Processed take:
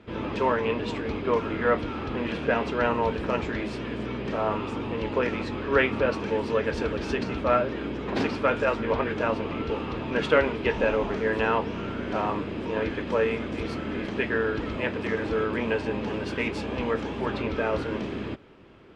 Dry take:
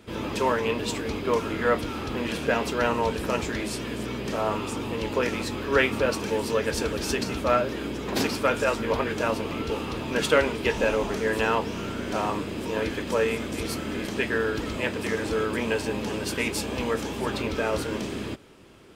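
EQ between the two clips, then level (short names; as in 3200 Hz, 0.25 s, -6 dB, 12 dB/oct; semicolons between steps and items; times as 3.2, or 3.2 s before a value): LPF 2800 Hz 12 dB/oct; 0.0 dB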